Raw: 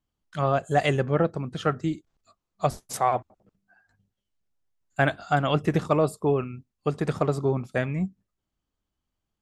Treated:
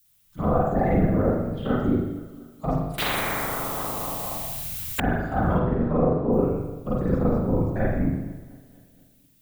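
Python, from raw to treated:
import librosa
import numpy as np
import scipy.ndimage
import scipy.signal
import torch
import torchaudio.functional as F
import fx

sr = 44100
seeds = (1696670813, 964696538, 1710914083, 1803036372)

y = fx.env_lowpass_down(x, sr, base_hz=2700.0, full_db=-18.0)
y = fx.low_shelf(y, sr, hz=180.0, db=11.0)
y = fx.level_steps(y, sr, step_db=11)
y = fx.env_phaser(y, sr, low_hz=270.0, high_hz=3000.0, full_db=-27.5)
y = fx.whisperise(y, sr, seeds[0])
y = fx.dmg_noise_colour(y, sr, seeds[1], colour='violet', level_db=-57.0)
y = fx.air_absorb(y, sr, metres=260.0, at=(5.58, 6.31), fade=0.02)
y = fx.echo_feedback(y, sr, ms=235, feedback_pct=58, wet_db=-21.0)
y = fx.rev_spring(y, sr, rt60_s=1.0, pass_ms=(38, 42), chirp_ms=20, drr_db=-8.0)
y = fx.spectral_comp(y, sr, ratio=10.0, at=(2.98, 5.0))
y = F.gain(torch.from_numpy(y), -5.5).numpy()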